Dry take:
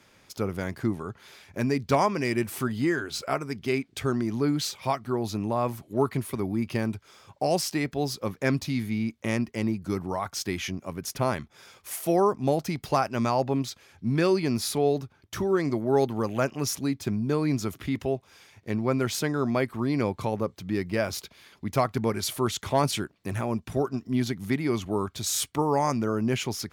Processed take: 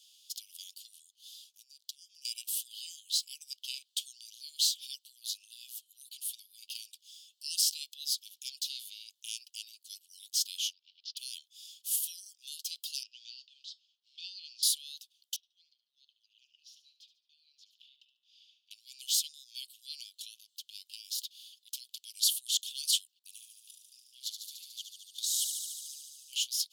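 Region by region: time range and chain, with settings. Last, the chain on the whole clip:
1.10–2.25 s: peaking EQ 2.2 kHz -8.5 dB 0.76 oct + compression 16:1, threshold -36 dBFS + tape noise reduction on one side only decoder only
10.73–11.17 s: companding laws mixed up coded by A + steep low-pass 4.8 kHz 48 dB/octave
13.03–14.63 s: companding laws mixed up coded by A + low-pass 4.9 kHz 24 dB/octave + feedback comb 280 Hz, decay 0.19 s
15.36–18.71 s: compression 2:1, threshold -48 dBFS + distance through air 270 m + feedback delay 72 ms, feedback 39%, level -11.5 dB
20.36–21.94 s: high-pass 880 Hz + compression 2.5:1, threshold -36 dBFS
23.19–26.33 s: level held to a coarse grid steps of 18 dB + feedback echo behind a high-pass 73 ms, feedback 79%, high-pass 3.8 kHz, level -5 dB
whole clip: steep high-pass 2.9 kHz 96 dB/octave; peaking EQ 5.8 kHz -3 dB 0.38 oct; trim +5 dB

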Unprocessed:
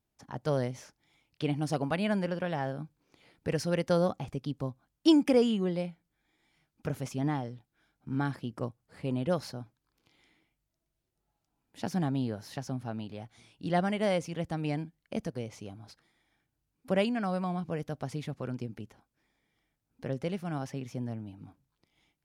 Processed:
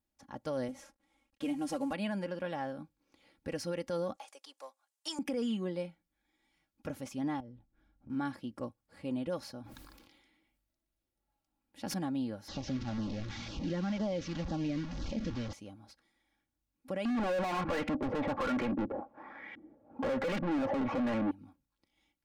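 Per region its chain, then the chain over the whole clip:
0.68–1.93 s: CVSD coder 64 kbps + comb 3.7 ms, depth 69% + tape noise reduction on one side only decoder only
4.16–5.19 s: partial rectifier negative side -3 dB + high-pass 590 Hz 24 dB/octave + peaking EQ 8.1 kHz +10 dB 1.3 oct
7.40–8.10 s: tilt EQ -3.5 dB/octave + compression 3:1, threshold -44 dBFS
9.61–11.94 s: peaking EQ 6.6 kHz -3 dB 0.63 oct + decay stretcher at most 38 dB/s
12.48–15.53 s: one-bit delta coder 32 kbps, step -34 dBFS + LFO notch saw down 2 Hz 300–2700 Hz + bass shelf 360 Hz +10.5 dB
17.05–21.31 s: high-pass 54 Hz 24 dB/octave + LFO low-pass saw up 1.2 Hz 250–2600 Hz + overdrive pedal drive 41 dB, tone 2 kHz, clips at -18 dBFS
whole clip: comb 3.6 ms, depth 60%; peak limiter -21.5 dBFS; trim -5.5 dB

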